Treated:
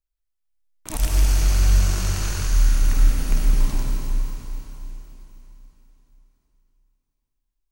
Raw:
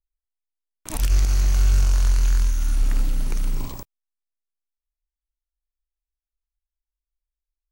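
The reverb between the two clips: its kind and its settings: algorithmic reverb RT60 3.7 s, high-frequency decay 1×, pre-delay 55 ms, DRR -2 dB

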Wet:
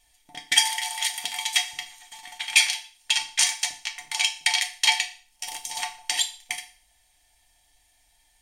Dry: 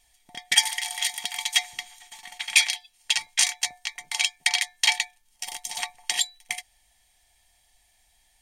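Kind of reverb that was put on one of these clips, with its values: FDN reverb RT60 0.43 s, low-frequency decay 1×, high-frequency decay 1×, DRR 3.5 dB; trim -1 dB

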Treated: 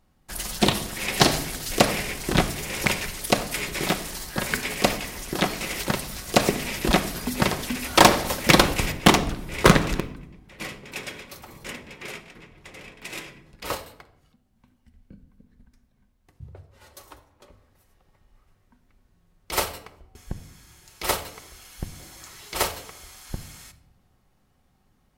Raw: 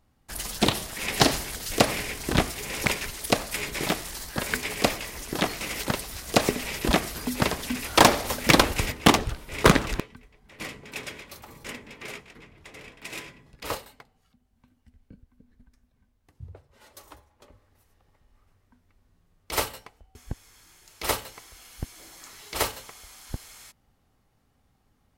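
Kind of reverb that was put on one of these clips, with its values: simulated room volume 2200 m³, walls furnished, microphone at 0.98 m; trim +1.5 dB

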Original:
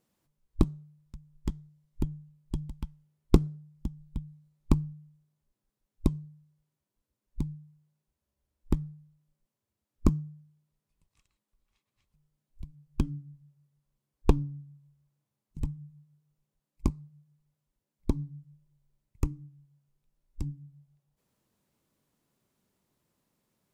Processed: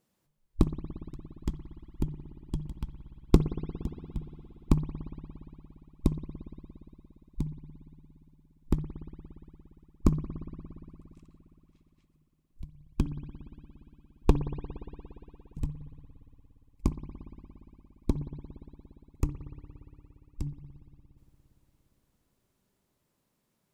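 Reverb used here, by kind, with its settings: spring tank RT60 3.5 s, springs 58 ms, chirp 35 ms, DRR 9.5 dB

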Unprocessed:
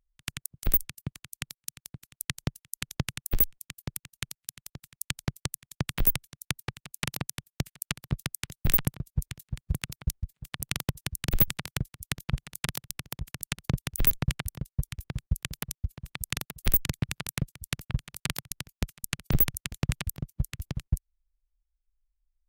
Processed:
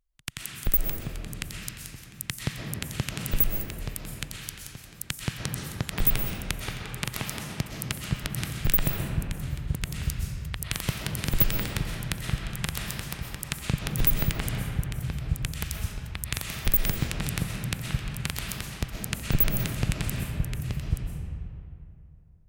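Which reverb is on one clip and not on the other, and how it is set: algorithmic reverb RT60 2.7 s, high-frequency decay 0.55×, pre-delay 85 ms, DRR -0.5 dB

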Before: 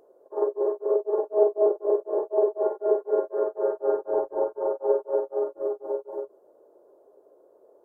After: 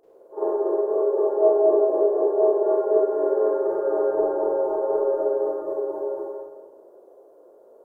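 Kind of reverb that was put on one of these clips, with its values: Schroeder reverb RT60 1.3 s, combs from 33 ms, DRR -10 dB; trim -4.5 dB

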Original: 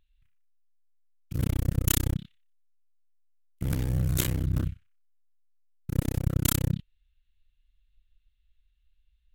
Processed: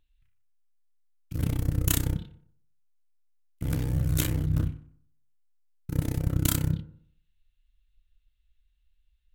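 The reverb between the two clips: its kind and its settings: FDN reverb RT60 0.6 s, low-frequency decay 1×, high-frequency decay 0.35×, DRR 8.5 dB; trim -1 dB

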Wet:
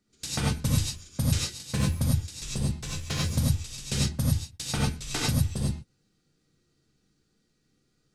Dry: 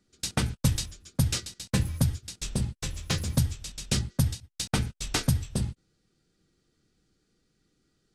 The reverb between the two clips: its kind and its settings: gated-style reverb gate 120 ms rising, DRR -4 dB; trim -5 dB

